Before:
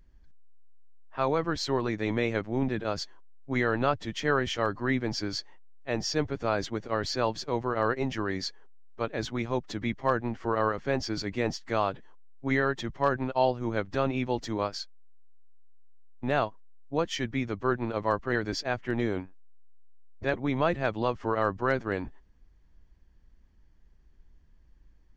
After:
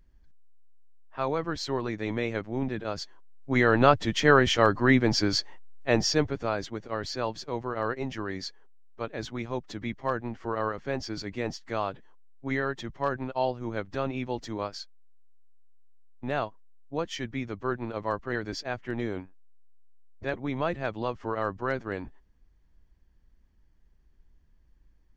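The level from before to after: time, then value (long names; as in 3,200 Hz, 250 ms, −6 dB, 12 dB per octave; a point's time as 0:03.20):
0:02.99 −2 dB
0:03.85 +7 dB
0:05.94 +7 dB
0:06.62 −3 dB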